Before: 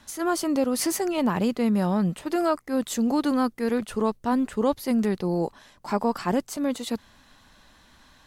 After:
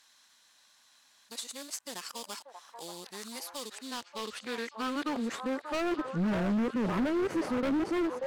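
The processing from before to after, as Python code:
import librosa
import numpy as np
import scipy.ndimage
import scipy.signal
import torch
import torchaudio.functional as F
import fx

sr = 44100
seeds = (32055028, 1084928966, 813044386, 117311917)

p1 = x[::-1].copy()
p2 = fx.sample_hold(p1, sr, seeds[0], rate_hz=4100.0, jitter_pct=20)
p3 = p1 + (p2 * librosa.db_to_amplitude(-5.0))
p4 = fx.filter_sweep_bandpass(p3, sr, from_hz=7200.0, to_hz=450.0, start_s=3.56, end_s=6.38, q=0.8)
p5 = p4 + fx.echo_stepped(p4, sr, ms=584, hz=770.0, octaves=0.7, feedback_pct=70, wet_db=-5.0, dry=0)
p6 = np.clip(p5, -10.0 ** (-25.5 / 20.0), 10.0 ** (-25.5 / 20.0))
y = fx.dynamic_eq(p6, sr, hz=770.0, q=1.4, threshold_db=-46.0, ratio=4.0, max_db=-7)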